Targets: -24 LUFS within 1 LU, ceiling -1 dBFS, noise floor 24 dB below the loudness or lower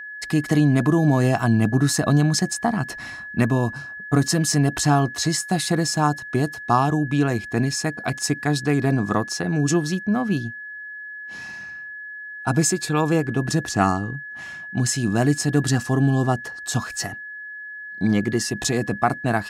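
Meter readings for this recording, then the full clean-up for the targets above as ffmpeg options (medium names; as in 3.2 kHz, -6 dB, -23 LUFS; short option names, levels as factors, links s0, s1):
steady tone 1.7 kHz; tone level -33 dBFS; loudness -21.5 LUFS; peak level -4.5 dBFS; loudness target -24.0 LUFS
-> -af "bandreject=f=1700:w=30"
-af "volume=0.75"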